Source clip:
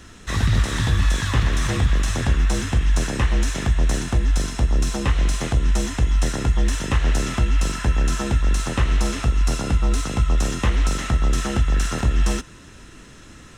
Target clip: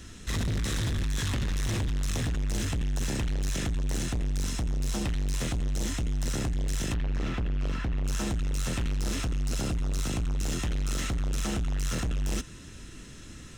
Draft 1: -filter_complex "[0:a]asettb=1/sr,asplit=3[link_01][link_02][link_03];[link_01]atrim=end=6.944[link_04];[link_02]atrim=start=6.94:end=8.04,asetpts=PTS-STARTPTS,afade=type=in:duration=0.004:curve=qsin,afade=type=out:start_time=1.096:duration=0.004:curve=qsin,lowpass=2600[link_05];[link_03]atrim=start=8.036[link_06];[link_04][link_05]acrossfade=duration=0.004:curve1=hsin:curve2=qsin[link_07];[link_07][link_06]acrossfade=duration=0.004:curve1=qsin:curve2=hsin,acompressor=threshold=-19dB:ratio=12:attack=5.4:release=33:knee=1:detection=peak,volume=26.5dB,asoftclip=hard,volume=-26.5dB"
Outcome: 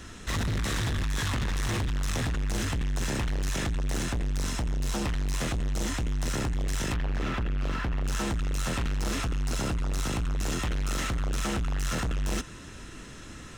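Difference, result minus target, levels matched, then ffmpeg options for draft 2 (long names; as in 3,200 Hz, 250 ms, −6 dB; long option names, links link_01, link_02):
1,000 Hz band +5.0 dB
-filter_complex "[0:a]asettb=1/sr,asplit=3[link_01][link_02][link_03];[link_01]atrim=end=6.944[link_04];[link_02]atrim=start=6.94:end=8.04,asetpts=PTS-STARTPTS,afade=type=in:duration=0.004:curve=qsin,afade=type=out:start_time=1.096:duration=0.004:curve=qsin,lowpass=2600[link_05];[link_03]atrim=start=8.036[link_06];[link_04][link_05]acrossfade=duration=0.004:curve1=hsin:curve2=qsin[link_07];[link_07][link_06]acrossfade=duration=0.004:curve1=qsin:curve2=hsin,acompressor=threshold=-19dB:ratio=12:attack=5.4:release=33:knee=1:detection=peak,equalizer=frequency=950:width_type=o:width=2.4:gain=-8,volume=26.5dB,asoftclip=hard,volume=-26.5dB"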